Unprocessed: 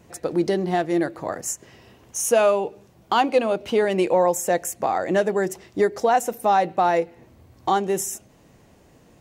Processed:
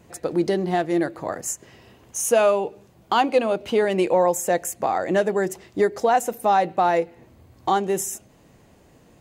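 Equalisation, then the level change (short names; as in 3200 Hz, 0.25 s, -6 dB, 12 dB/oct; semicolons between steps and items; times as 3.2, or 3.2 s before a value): notch 5600 Hz, Q 16; 0.0 dB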